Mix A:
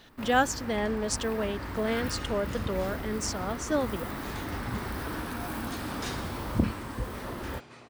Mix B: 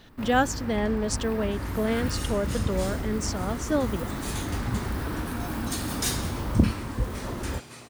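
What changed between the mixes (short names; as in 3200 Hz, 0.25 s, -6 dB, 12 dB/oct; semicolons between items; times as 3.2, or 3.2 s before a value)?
second sound: remove tape spacing loss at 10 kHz 21 dB; master: add low shelf 290 Hz +7.5 dB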